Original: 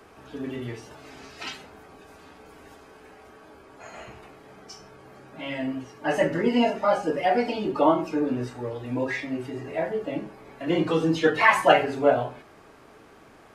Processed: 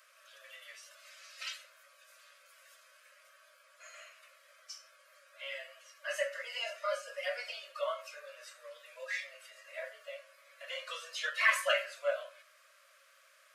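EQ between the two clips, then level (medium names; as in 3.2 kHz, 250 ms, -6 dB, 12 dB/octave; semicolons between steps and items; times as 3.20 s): Chebyshev high-pass 540 Hz, order 8; Butterworth band-stop 820 Hz, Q 1.3; treble shelf 5.1 kHz +9 dB; -7.0 dB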